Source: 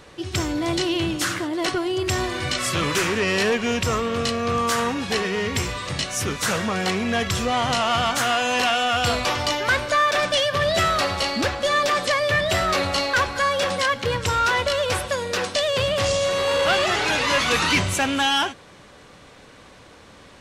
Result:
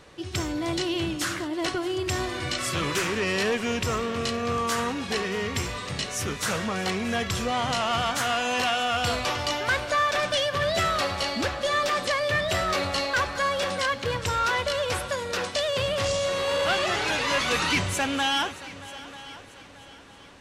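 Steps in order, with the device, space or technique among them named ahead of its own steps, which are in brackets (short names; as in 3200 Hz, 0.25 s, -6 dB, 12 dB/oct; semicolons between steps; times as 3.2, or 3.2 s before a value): multi-head tape echo (multi-head echo 0.313 s, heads second and third, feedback 42%, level -18.5 dB; wow and flutter 13 cents); gain -4.5 dB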